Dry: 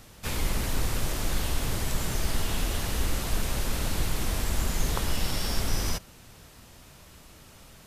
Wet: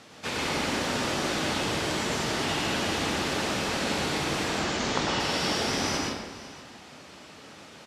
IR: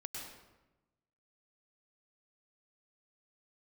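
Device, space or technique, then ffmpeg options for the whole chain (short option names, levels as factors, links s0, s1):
supermarket ceiling speaker: -filter_complex "[0:a]asettb=1/sr,asplit=3[s0][s1][s2];[s0]atrim=end=4.484[s3];[s1]atrim=start=4.48:end=5.2,asetpts=PTS-STARTPTS,afade=t=in:d=0.004:c=qsin,afade=t=out:st=0.716:d=0.004:c=qsin,lowpass=f=7400:w=0.5412,lowpass=f=7400:w=1.3066[s4];[s2]atrim=start=5.196[s5];[s3][s4]acrossfade=d=0.004:c1=hsin:c2=qsin[s6];[s6][s5]acrossfade=d=0.004:c1=qsin:c2=hsin,highpass=220,lowpass=5500[s7];[1:a]atrim=start_sample=2205[s8];[s7][s8]afir=irnorm=-1:irlink=0,aecho=1:1:507:0.133,volume=2.82"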